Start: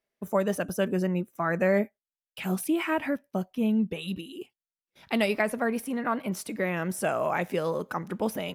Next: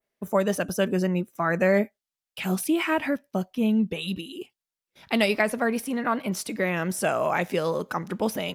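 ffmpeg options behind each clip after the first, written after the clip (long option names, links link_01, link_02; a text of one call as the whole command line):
ffmpeg -i in.wav -af "adynamicequalizer=threshold=0.00316:dfrequency=4800:dqfactor=0.78:tfrequency=4800:tqfactor=0.78:attack=5:release=100:ratio=0.375:range=2.5:mode=boostabove:tftype=bell,volume=2.5dB" out.wav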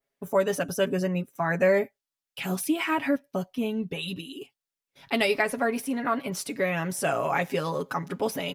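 ffmpeg -i in.wav -af "aecho=1:1:7.2:0.67,volume=-2.5dB" out.wav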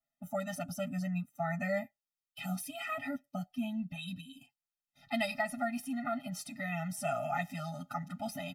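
ffmpeg -i in.wav -af "afftfilt=real='re*eq(mod(floor(b*sr/1024/300),2),0)':imag='im*eq(mod(floor(b*sr/1024/300),2),0)':win_size=1024:overlap=0.75,volume=-6dB" out.wav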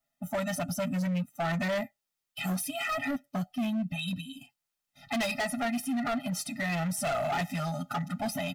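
ffmpeg -i in.wav -af "asoftclip=type=hard:threshold=-35dB,volume=8dB" out.wav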